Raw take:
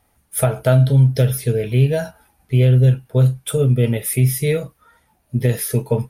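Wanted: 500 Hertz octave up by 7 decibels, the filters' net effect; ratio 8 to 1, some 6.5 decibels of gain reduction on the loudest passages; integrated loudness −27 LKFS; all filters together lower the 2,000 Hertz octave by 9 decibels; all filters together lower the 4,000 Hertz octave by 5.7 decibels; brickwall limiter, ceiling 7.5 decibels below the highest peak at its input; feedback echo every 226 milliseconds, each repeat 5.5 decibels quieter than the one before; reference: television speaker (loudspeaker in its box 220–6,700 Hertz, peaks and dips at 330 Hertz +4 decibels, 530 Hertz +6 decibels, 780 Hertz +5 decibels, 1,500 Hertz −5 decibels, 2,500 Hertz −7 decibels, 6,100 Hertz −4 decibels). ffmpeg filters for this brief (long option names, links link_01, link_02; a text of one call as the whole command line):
ffmpeg -i in.wav -af "equalizer=frequency=500:width_type=o:gain=4,equalizer=frequency=2000:width_type=o:gain=-5.5,equalizer=frequency=4000:width_type=o:gain=-3.5,acompressor=threshold=-15dB:ratio=8,alimiter=limit=-14dB:level=0:latency=1,highpass=frequency=220:width=0.5412,highpass=frequency=220:width=1.3066,equalizer=frequency=330:width_type=q:width=4:gain=4,equalizer=frequency=530:width_type=q:width=4:gain=6,equalizer=frequency=780:width_type=q:width=4:gain=5,equalizer=frequency=1500:width_type=q:width=4:gain=-5,equalizer=frequency=2500:width_type=q:width=4:gain=-7,equalizer=frequency=6100:width_type=q:width=4:gain=-4,lowpass=frequency=6700:width=0.5412,lowpass=frequency=6700:width=1.3066,aecho=1:1:226|452|678|904|1130|1356|1582:0.531|0.281|0.149|0.079|0.0419|0.0222|0.0118,volume=-3dB" out.wav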